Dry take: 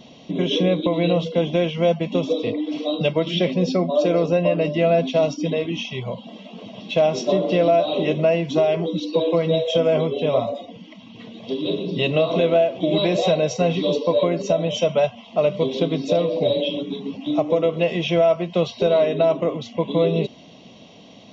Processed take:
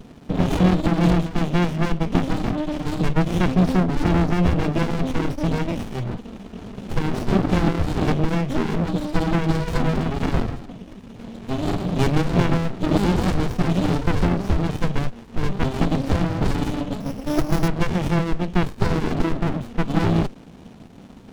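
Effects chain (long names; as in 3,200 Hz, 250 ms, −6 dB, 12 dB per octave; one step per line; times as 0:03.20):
0:17.00–0:17.68: samples sorted by size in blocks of 8 samples
windowed peak hold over 65 samples
level +5 dB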